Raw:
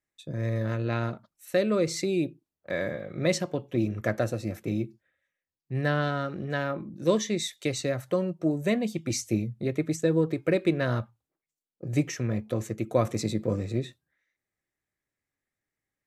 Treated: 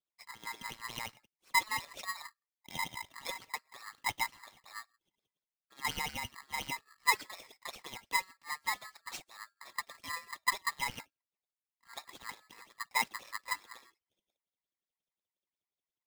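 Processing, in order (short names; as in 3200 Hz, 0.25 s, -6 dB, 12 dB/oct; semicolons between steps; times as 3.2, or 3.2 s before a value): tracing distortion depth 0.04 ms; wah 5.6 Hz 470–3800 Hz, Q 4.1; polarity switched at an audio rate 1500 Hz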